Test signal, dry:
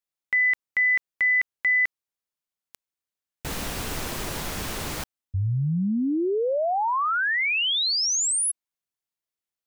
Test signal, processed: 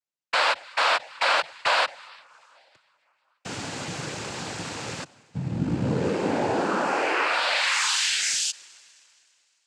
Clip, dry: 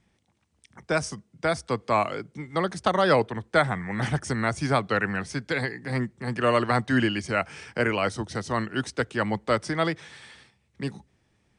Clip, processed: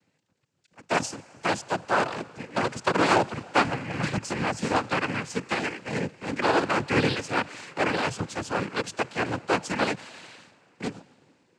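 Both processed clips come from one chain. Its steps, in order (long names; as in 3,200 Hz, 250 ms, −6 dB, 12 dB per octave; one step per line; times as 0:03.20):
sub-harmonics by changed cycles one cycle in 3, inverted
in parallel at −9.5 dB: log-companded quantiser 4 bits
on the sum: dense smooth reverb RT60 2.8 s, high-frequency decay 0.95×, DRR 19.5 dB
cochlear-implant simulation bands 8
every ending faded ahead of time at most 550 dB per second
level −2.5 dB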